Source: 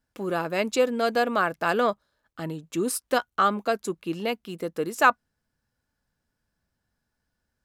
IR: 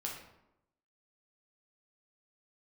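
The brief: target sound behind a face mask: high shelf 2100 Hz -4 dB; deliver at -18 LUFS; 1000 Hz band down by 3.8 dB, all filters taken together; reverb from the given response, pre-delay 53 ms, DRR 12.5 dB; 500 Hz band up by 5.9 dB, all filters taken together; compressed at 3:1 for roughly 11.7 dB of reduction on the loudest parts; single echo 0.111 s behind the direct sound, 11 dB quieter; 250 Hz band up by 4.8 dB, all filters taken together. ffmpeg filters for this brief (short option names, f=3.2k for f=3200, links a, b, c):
-filter_complex "[0:a]equalizer=f=250:t=o:g=4,equalizer=f=500:t=o:g=8,equalizer=f=1k:t=o:g=-8,acompressor=threshold=-26dB:ratio=3,aecho=1:1:111:0.282,asplit=2[a][b];[1:a]atrim=start_sample=2205,adelay=53[c];[b][c]afir=irnorm=-1:irlink=0,volume=-13dB[d];[a][d]amix=inputs=2:normalize=0,highshelf=f=2.1k:g=-4,volume=11.5dB"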